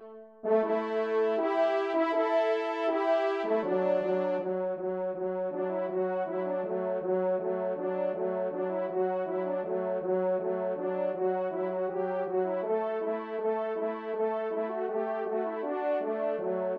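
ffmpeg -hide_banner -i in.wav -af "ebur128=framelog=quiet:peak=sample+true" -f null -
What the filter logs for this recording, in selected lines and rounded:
Integrated loudness:
  I:         -30.4 LUFS
  Threshold: -40.4 LUFS
Loudness range:
  LRA:         3.6 LU
  Threshold: -50.5 LUFS
  LRA low:   -31.7 LUFS
  LRA high:  -28.1 LUFS
Sample peak:
  Peak:      -15.3 dBFS
True peak:
  Peak:      -15.3 dBFS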